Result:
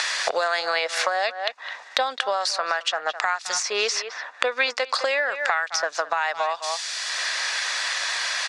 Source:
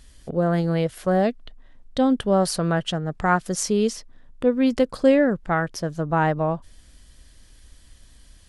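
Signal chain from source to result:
high-pass filter 700 Hz 24 dB per octave
far-end echo of a speakerphone 210 ms, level −18 dB
downward compressor 6 to 1, threshold −36 dBFS, peak gain reduction 19.5 dB
low-pass filter 6,500 Hz 24 dB per octave
tilt shelving filter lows −6 dB, about 1,200 Hz
notch filter 3,100 Hz, Q 7.4
boost into a limiter +25.5 dB
multiband upward and downward compressor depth 100%
level −9 dB

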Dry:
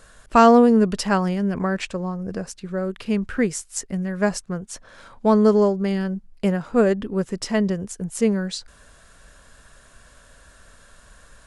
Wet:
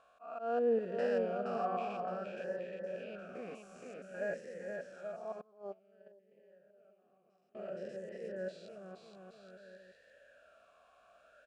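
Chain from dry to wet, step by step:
spectrum averaged block by block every 200 ms
volume swells 348 ms
bouncing-ball delay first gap 470 ms, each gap 0.75×, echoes 5
0:05.41–0:07.55: noise gate −16 dBFS, range −27 dB
formant filter swept between two vowels a-e 0.55 Hz

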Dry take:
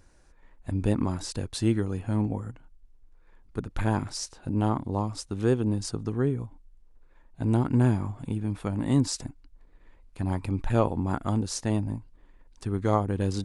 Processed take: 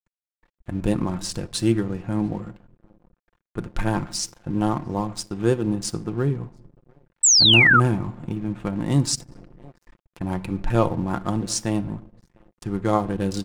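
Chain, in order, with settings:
adaptive Wiener filter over 9 samples
high-shelf EQ 2,800 Hz +6 dB
slap from a distant wall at 120 metres, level −27 dB
convolution reverb RT60 0.65 s, pre-delay 6 ms, DRR 13 dB
dead-zone distortion −47.5 dBFS
0:07.23–0:07.80: sound drawn into the spectrogram fall 1,200–8,200 Hz −18 dBFS
0:09.15–0:10.21: compressor whose output falls as the input rises −46 dBFS, ratio −1
comb filter 5.7 ms, depth 38%
level +3 dB

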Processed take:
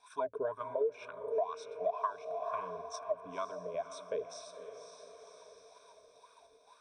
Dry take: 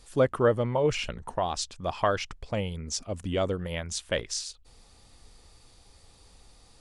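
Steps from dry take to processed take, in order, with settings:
EQ curve with evenly spaced ripples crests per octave 1.6, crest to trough 17 dB
LFO wah 2.1 Hz 450–1,200 Hz, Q 11
in parallel at +1 dB: output level in coarse steps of 15 dB
on the sum: high-shelf EQ 2,400 Hz +11.5 dB
on a send: feedback delay with all-pass diffusion 522 ms, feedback 46%, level −11.5 dB
on the sum: downward compressor 6 to 1, threshold −30 dBFS, peak gain reduction 14 dB
one half of a high-frequency compander encoder only

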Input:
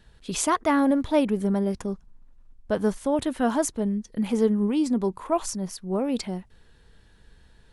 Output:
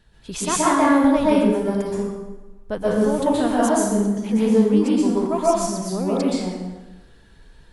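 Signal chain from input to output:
dense smooth reverb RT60 1.1 s, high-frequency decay 0.75×, pre-delay 110 ms, DRR −7 dB
level −2 dB

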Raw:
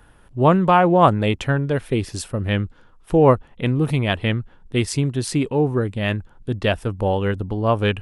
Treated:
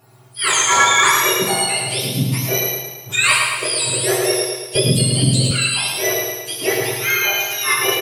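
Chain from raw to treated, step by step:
frequency axis turned over on the octave scale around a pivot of 1,100 Hz
sine wavefolder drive 5 dB, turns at −3.5 dBFS
on a send: repeating echo 109 ms, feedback 52%, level −4.5 dB
on the sum: coupled-rooms reverb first 0.71 s, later 2.2 s, DRR −1 dB
0:04.75–0:05.51: multiband upward and downward compressor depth 100%
level −7.5 dB

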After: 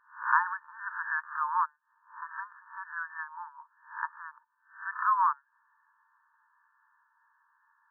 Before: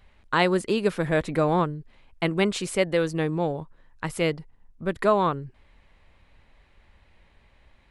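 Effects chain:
peak hold with a rise ahead of every peak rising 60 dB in 0.39 s
0:01.76–0:02.57: high-frequency loss of the air 460 metres
brick-wall band-pass 880–1,800 Hz

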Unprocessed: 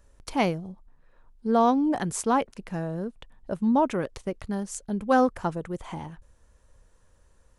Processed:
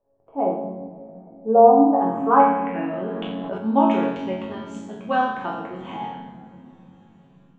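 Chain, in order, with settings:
drawn EQ curve 2,600 Hz 0 dB, 5,000 Hz −9 dB, 8,900 Hz −5 dB
automatic gain control gain up to 12 dB
resonators tuned to a chord F#2 minor, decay 0.78 s
low-pass filter sweep 640 Hz → 4,300 Hz, 0:01.77–0:03.29
convolution reverb RT60 3.6 s, pre-delay 3 ms, DRR 9.5 dB
0:02.93–0:03.58: envelope flattener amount 70%
level +2.5 dB

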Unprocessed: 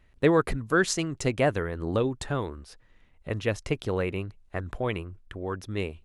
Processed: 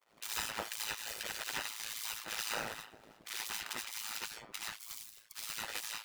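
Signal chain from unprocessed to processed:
lower of the sound and its delayed copy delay 0.45 ms
0:00.84–0:01.50: phaser with its sweep stopped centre 1,400 Hz, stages 4
0:02.25–0:03.34: gain into a clipping stage and back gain 27.5 dB
downward compressor 8 to 1, threshold −39 dBFS, peak gain reduction 22 dB
downward expander −53 dBFS
decimation without filtering 40×
0:04.68–0:05.37: high-pass filter 540 Hz 6 dB per octave
convolution reverb RT60 0.45 s, pre-delay 40 ms, DRR −4.5 dB
gate on every frequency bin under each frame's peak −25 dB weak
amplitude modulation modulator 110 Hz, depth 90%
level +16 dB
Nellymoser 88 kbit/s 44,100 Hz

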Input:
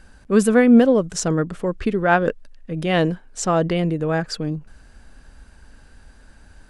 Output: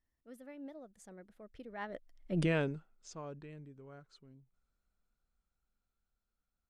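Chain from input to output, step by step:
source passing by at 0:02.40, 50 m/s, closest 2.5 metres
level −3.5 dB

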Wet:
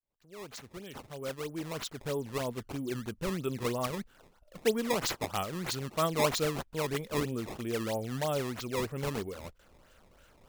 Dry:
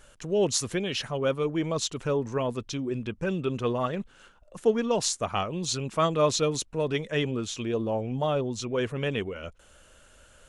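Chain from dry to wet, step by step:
fade in at the beginning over 2.77 s
sample-and-hold swept by an LFO 17×, swing 160% 3.1 Hz
level −5 dB

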